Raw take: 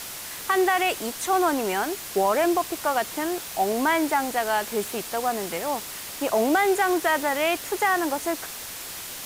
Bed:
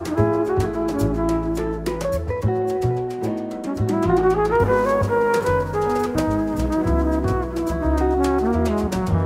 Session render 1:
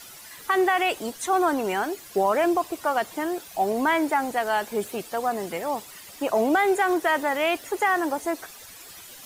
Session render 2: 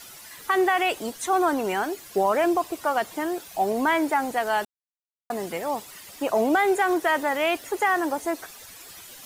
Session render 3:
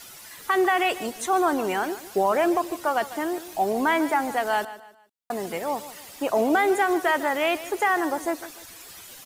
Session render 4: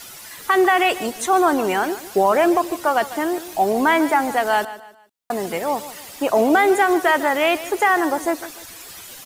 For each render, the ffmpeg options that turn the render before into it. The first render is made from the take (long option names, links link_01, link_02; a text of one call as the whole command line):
ffmpeg -i in.wav -af "afftdn=noise_reduction=12:noise_floor=-37" out.wav
ffmpeg -i in.wav -filter_complex "[0:a]asplit=3[link_01][link_02][link_03];[link_01]atrim=end=4.65,asetpts=PTS-STARTPTS,afade=type=out:start_time=4.646:duration=0.004:curve=hsin[link_04];[link_02]atrim=start=4.65:end=5.3,asetpts=PTS-STARTPTS,volume=0[link_05];[link_03]atrim=start=5.3,asetpts=PTS-STARTPTS,afade=type=in:duration=0.004:curve=hsin[link_06];[link_04][link_05][link_06]concat=n=3:v=0:a=1" out.wav
ffmpeg -i in.wav -af "aecho=1:1:149|298|447:0.178|0.0605|0.0206" out.wav
ffmpeg -i in.wav -af "volume=5.5dB" out.wav